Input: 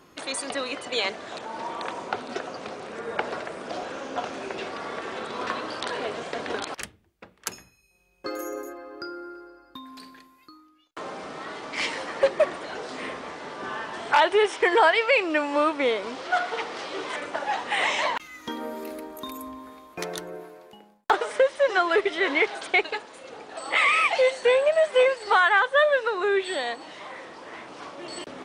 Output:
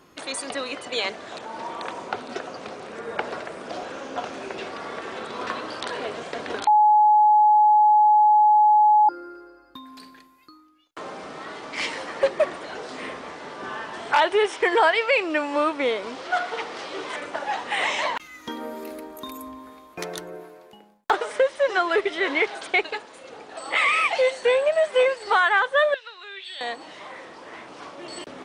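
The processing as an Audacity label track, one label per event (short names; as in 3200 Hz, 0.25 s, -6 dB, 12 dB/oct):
6.670000	9.090000	bleep 846 Hz -12.5 dBFS
25.940000	26.610000	band-pass 3500 Hz, Q 2.1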